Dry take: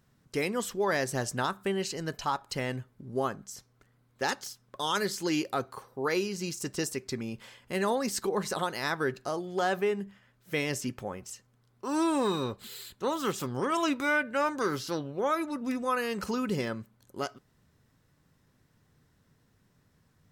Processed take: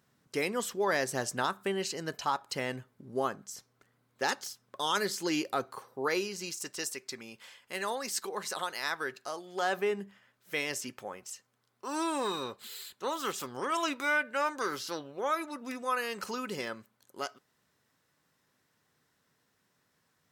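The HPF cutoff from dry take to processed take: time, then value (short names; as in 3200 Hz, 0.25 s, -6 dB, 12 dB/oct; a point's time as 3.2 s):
HPF 6 dB/oct
6.02 s 270 Hz
6.73 s 1100 Hz
9.43 s 1100 Hz
9.94 s 270 Hz
10.54 s 680 Hz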